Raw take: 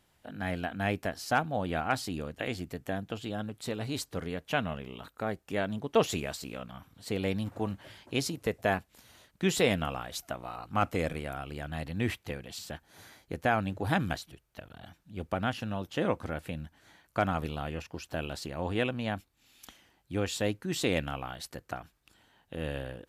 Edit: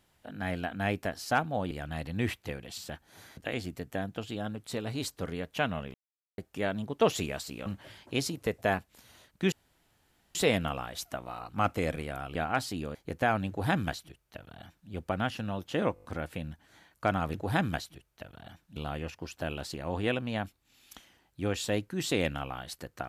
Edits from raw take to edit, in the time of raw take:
0:01.71–0:02.31: swap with 0:11.52–0:13.18
0:04.88–0:05.32: silence
0:06.60–0:07.66: remove
0:09.52: splice in room tone 0.83 s
0:13.72–0:15.13: duplicate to 0:17.48
0:16.17: stutter 0.02 s, 6 plays

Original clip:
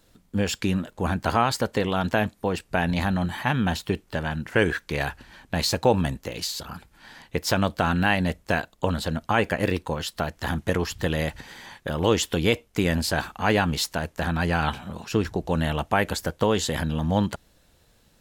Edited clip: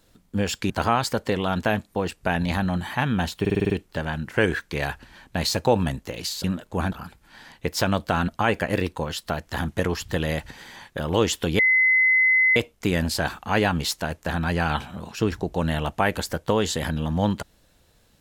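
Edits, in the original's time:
0:00.70–0:01.18: move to 0:06.62
0:03.88: stutter 0.05 s, 7 plays
0:07.98–0:09.18: remove
0:12.49: insert tone 2,040 Hz −15 dBFS 0.97 s

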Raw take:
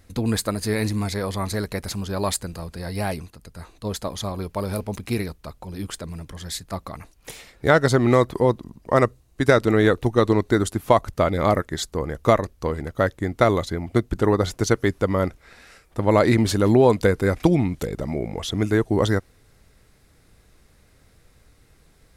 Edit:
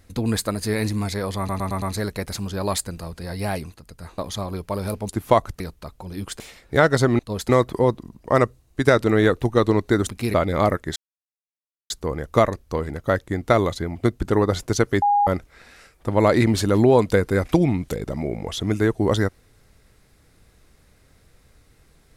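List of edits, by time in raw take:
0:01.38: stutter 0.11 s, 5 plays
0:03.74–0:04.04: move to 0:08.10
0:04.95–0:05.22: swap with 0:10.68–0:11.19
0:06.02–0:07.31: remove
0:11.81: splice in silence 0.94 s
0:14.93–0:15.18: beep over 818 Hz −14.5 dBFS

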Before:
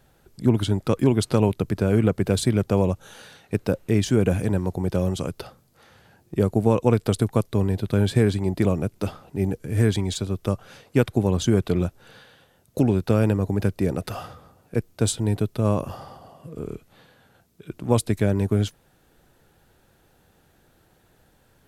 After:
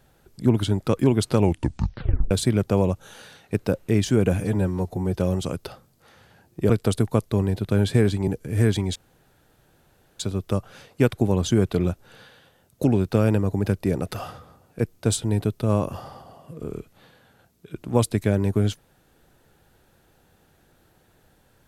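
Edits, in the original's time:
0:01.38: tape stop 0.93 s
0:04.40–0:04.91: time-stretch 1.5×
0:06.44–0:06.91: remove
0:08.49–0:09.47: remove
0:10.15: splice in room tone 1.24 s

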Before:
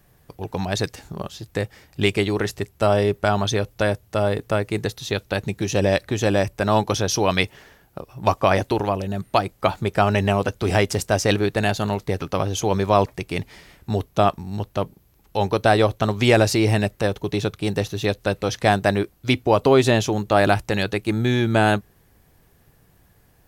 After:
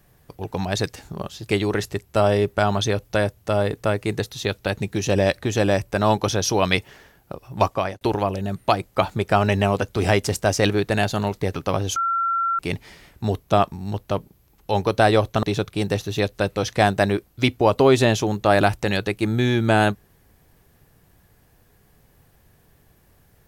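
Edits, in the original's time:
0:01.49–0:02.15: remove
0:08.28–0:08.67: fade out linear
0:12.62–0:13.25: beep over 1,360 Hz −19 dBFS
0:16.09–0:17.29: remove

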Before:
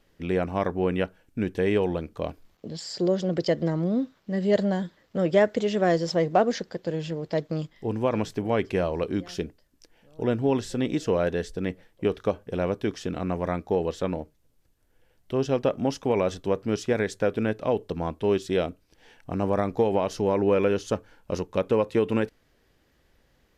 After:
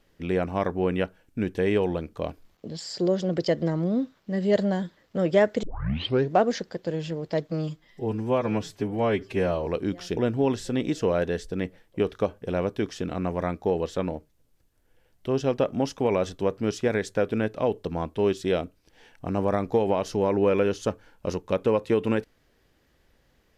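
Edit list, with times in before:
0:05.63: tape start 0.70 s
0:07.50–0:08.94: time-stretch 1.5×
0:09.45–0:10.22: remove

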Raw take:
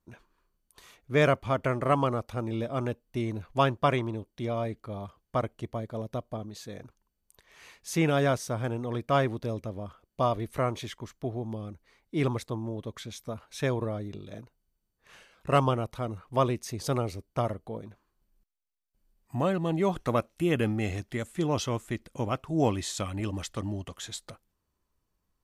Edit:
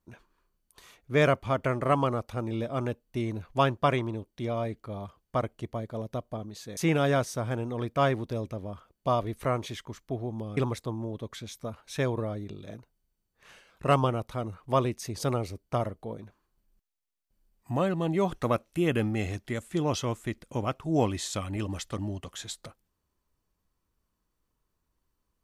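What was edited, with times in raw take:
0:06.77–0:07.90: remove
0:11.70–0:12.21: remove

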